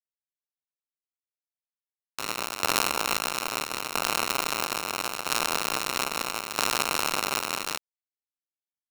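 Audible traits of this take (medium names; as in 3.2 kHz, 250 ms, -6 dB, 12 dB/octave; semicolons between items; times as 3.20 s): a buzz of ramps at a fixed pitch in blocks of 32 samples; tremolo saw down 0.76 Hz, depth 65%; a quantiser's noise floor 10-bit, dither none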